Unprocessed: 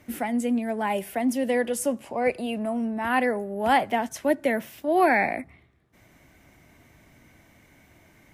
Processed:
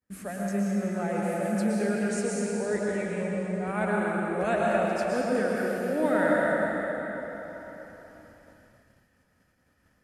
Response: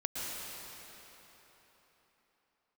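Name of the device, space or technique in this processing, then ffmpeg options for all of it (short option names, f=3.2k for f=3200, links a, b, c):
slowed and reverbed: -filter_complex "[0:a]asetrate=36603,aresample=44100[a];[1:a]atrim=start_sample=2205[b];[a][b]afir=irnorm=-1:irlink=0,agate=range=-33dB:threshold=-44dB:ratio=3:detection=peak,volume=-6.5dB"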